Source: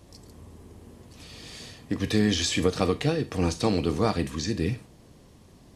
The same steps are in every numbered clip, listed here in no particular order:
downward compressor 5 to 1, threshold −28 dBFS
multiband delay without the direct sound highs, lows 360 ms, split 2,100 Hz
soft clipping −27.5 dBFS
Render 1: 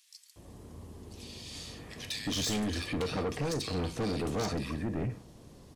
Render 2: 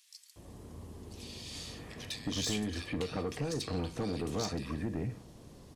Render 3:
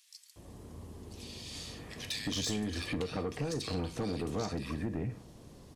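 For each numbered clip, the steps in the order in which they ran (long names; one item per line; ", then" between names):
multiband delay without the direct sound, then soft clipping, then downward compressor
downward compressor, then multiband delay without the direct sound, then soft clipping
multiband delay without the direct sound, then downward compressor, then soft clipping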